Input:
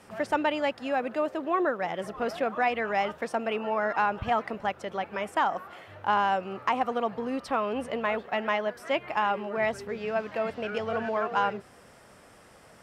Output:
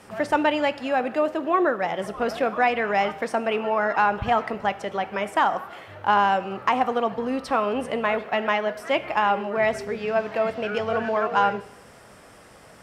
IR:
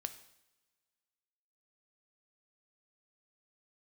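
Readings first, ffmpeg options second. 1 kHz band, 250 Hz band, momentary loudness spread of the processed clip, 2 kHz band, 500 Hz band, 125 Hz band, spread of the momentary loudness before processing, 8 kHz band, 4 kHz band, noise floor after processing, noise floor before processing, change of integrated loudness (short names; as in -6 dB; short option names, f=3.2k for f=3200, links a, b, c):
+5.0 dB, +5.0 dB, 6 LU, +5.0 dB, +5.0 dB, +5.0 dB, 6 LU, n/a, +5.0 dB, -49 dBFS, -54 dBFS, +5.0 dB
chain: -filter_complex "[0:a]asplit=2[a][b];[1:a]atrim=start_sample=2205[c];[b][c]afir=irnorm=-1:irlink=0,volume=7.5dB[d];[a][d]amix=inputs=2:normalize=0,volume=-4dB"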